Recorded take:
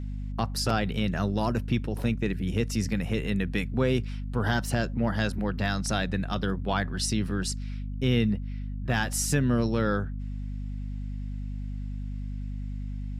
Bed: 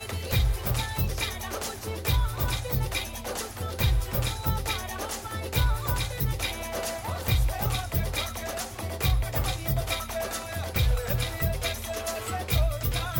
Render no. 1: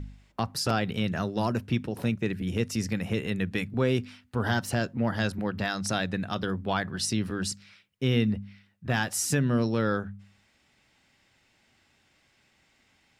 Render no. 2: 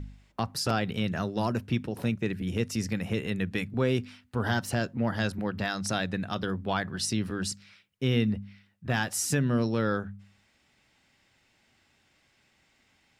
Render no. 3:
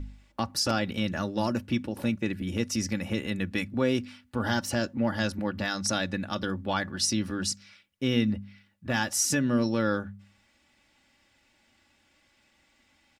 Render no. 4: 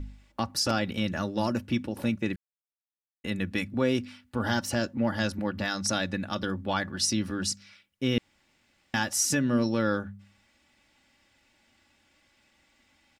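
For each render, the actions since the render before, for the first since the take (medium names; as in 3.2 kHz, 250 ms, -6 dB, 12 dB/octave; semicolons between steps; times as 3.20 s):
de-hum 50 Hz, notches 5
trim -1 dB
comb 3.5 ms, depth 52%; dynamic bell 5.8 kHz, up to +6 dB, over -52 dBFS, Q 2.7
2.36–3.24 s: mute; 8.18–8.94 s: room tone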